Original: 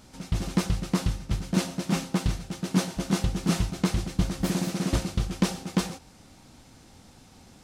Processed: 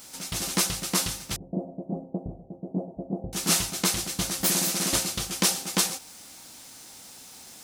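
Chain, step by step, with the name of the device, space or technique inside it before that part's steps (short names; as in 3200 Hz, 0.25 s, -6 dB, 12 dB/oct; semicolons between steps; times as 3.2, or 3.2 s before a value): turntable without a phono preamp (RIAA curve recording; white noise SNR 28 dB); 1.36–3.33 elliptic low-pass 680 Hz, stop band 60 dB; gain +2.5 dB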